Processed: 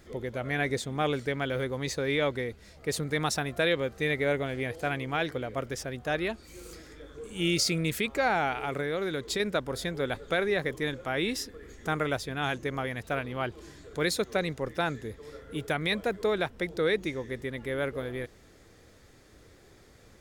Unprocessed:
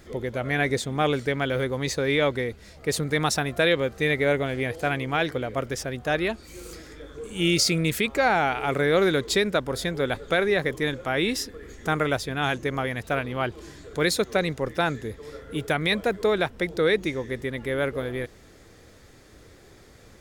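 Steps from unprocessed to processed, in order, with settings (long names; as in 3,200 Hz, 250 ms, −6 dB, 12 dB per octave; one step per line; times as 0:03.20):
0:08.62–0:09.40: downward compressor, threshold −23 dBFS, peak gain reduction 7 dB
level −5 dB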